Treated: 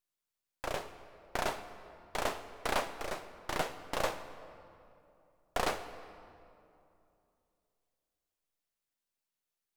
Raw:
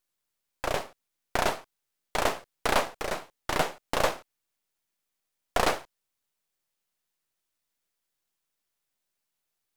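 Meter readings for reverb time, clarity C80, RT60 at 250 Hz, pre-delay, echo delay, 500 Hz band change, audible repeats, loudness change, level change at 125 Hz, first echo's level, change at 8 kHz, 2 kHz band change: 2.7 s, 12.0 dB, 3.0 s, 16 ms, no echo, -7.0 dB, no echo, -7.5 dB, -7.0 dB, no echo, -7.5 dB, -7.0 dB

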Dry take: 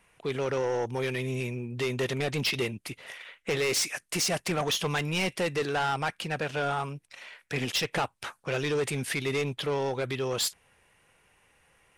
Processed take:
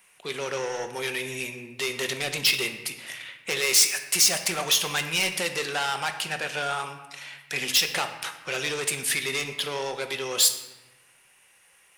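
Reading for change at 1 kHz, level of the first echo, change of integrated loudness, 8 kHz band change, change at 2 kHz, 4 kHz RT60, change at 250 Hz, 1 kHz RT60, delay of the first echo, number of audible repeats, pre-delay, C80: +0.5 dB, no echo, +5.0 dB, +10.5 dB, +5.0 dB, 0.80 s, -5.5 dB, 1.2 s, no echo, no echo, 5 ms, 11.0 dB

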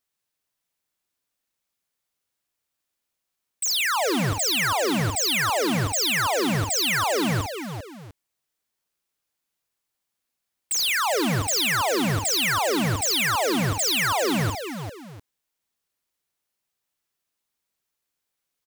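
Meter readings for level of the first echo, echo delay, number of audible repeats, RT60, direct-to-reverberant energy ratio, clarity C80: -8.5 dB, 50 ms, 3, no reverb, no reverb, no reverb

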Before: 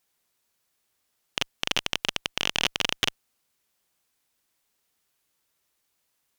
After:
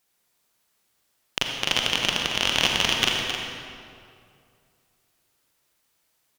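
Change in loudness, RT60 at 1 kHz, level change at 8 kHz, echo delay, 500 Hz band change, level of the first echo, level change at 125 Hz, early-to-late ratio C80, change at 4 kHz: +4.5 dB, 2.3 s, +4.5 dB, 265 ms, +5.5 dB, -8.0 dB, +6.0 dB, 1.0 dB, +5.5 dB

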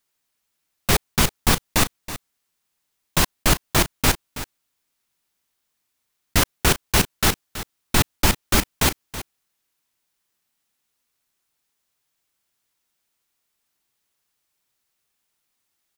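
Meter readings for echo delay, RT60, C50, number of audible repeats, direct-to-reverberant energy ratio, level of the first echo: 325 ms, no reverb, no reverb, 1, no reverb, -13.5 dB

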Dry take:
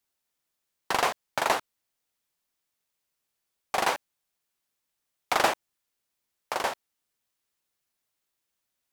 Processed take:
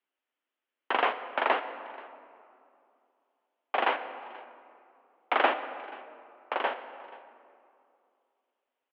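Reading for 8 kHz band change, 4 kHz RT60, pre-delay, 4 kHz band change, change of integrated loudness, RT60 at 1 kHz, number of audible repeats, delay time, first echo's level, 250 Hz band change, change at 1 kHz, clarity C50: under -35 dB, 1.3 s, 12 ms, -4.5 dB, -1.5 dB, 2.4 s, 1, 482 ms, -22.5 dB, -1.0 dB, -0.5 dB, 11.0 dB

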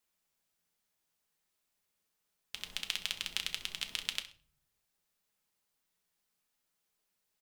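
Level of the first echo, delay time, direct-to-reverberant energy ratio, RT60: -15.5 dB, 65 ms, 5.0 dB, 0.45 s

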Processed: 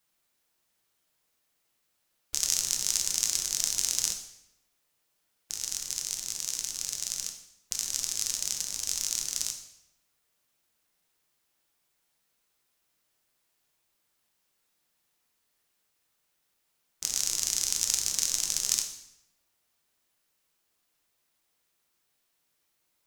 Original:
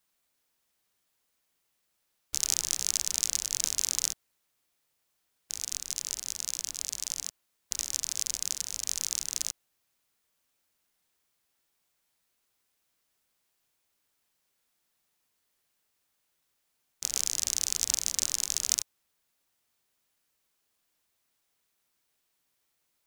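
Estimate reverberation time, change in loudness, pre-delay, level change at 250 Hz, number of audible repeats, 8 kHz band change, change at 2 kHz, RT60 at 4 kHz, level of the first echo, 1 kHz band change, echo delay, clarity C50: 0.80 s, +1.0 dB, 6 ms, +2.0 dB, no echo, +1.5 dB, +1.5 dB, 0.75 s, no echo, +1.5 dB, no echo, 8.0 dB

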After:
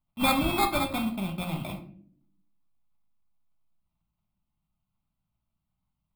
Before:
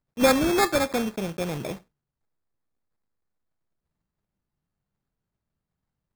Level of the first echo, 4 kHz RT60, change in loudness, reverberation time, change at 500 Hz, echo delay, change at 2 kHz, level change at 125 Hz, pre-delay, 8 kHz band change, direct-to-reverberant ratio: no echo, 0.35 s, -3.5 dB, 0.55 s, -10.5 dB, no echo, -3.5 dB, +0.5 dB, 5 ms, -6.0 dB, 5.0 dB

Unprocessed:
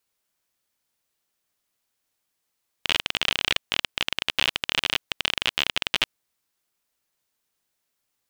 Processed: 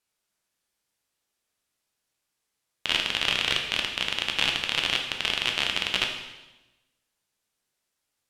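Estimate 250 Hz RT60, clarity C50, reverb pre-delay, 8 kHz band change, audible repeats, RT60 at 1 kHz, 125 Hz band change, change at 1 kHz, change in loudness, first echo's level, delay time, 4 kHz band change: 1.2 s, 5.5 dB, 8 ms, -0.5 dB, no echo, 1.0 s, +0.5 dB, -0.5 dB, -0.5 dB, no echo, no echo, -0.5 dB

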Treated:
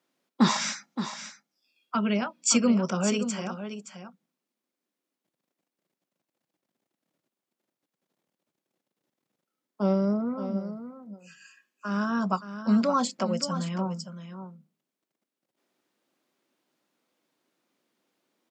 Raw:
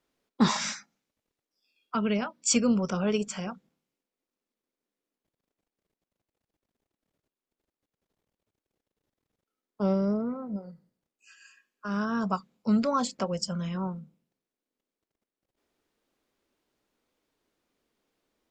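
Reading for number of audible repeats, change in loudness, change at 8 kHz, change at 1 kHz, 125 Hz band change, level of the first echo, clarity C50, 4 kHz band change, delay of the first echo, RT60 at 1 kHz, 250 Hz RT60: 1, +1.5 dB, +2.5 dB, +2.5 dB, +1.5 dB, -10.5 dB, no reverb, +2.5 dB, 571 ms, no reverb, no reverb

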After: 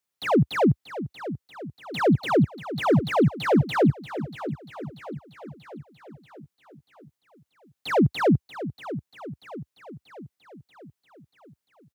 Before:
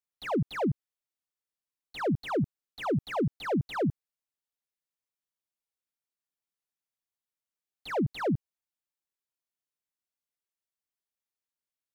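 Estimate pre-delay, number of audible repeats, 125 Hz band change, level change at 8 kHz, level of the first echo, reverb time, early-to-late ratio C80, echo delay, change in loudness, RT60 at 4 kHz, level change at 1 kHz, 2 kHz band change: no reverb, 5, +9.0 dB, no reading, -13.0 dB, no reverb, no reverb, 636 ms, +7.0 dB, no reverb, +9.0 dB, +9.0 dB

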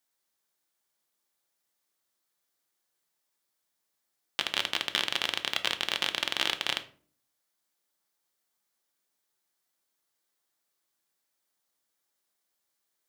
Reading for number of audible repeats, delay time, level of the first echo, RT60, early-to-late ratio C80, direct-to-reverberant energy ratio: no echo, no echo, no echo, 0.45 s, 19.5 dB, 7.5 dB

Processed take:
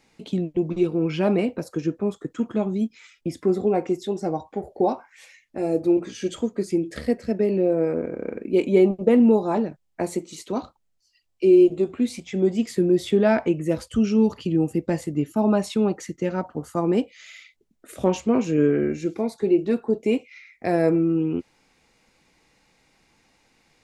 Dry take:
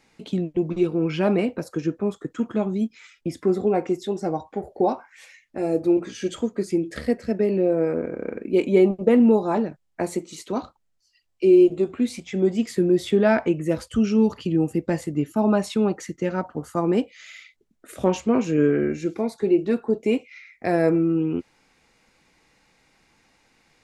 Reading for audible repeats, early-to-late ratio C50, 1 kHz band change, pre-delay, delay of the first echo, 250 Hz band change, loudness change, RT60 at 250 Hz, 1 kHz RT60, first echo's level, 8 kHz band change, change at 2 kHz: no echo, no reverb, -1.0 dB, no reverb, no echo, 0.0 dB, 0.0 dB, no reverb, no reverb, no echo, 0.0 dB, -2.0 dB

